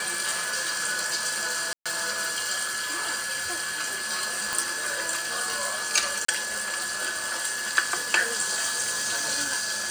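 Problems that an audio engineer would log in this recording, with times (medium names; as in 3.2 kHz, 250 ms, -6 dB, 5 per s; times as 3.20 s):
whine 1.7 kHz -33 dBFS
1.73–1.86 s: dropout 126 ms
4.53 s: pop
6.25–6.28 s: dropout 34 ms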